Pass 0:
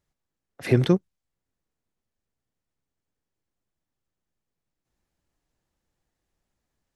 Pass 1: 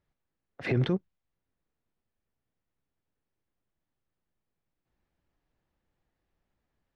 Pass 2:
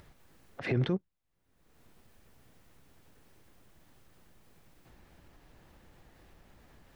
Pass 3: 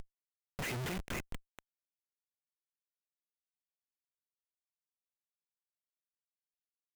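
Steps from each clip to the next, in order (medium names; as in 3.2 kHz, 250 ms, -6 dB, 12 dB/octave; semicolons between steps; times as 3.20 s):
peak limiter -18 dBFS, peak gain reduction 11 dB; low-pass 3.2 kHz 12 dB/octave
upward compressor, threshold -35 dBFS; trim -2.5 dB
LFO low-pass saw down 0.32 Hz 370–5100 Hz; feedback echo behind a high-pass 242 ms, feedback 38%, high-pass 1.7 kHz, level -4 dB; Schmitt trigger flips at -43 dBFS; trim +3.5 dB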